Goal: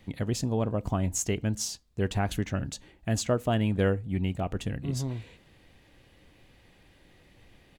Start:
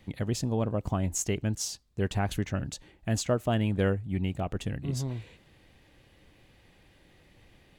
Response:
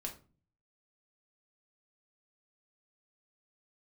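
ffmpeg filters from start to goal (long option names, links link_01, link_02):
-filter_complex "[0:a]asplit=2[link_01][link_02];[link_02]aecho=1:1:4.2:0.65[link_03];[1:a]atrim=start_sample=2205,asetrate=66150,aresample=44100[link_04];[link_03][link_04]afir=irnorm=-1:irlink=0,volume=-12dB[link_05];[link_01][link_05]amix=inputs=2:normalize=0"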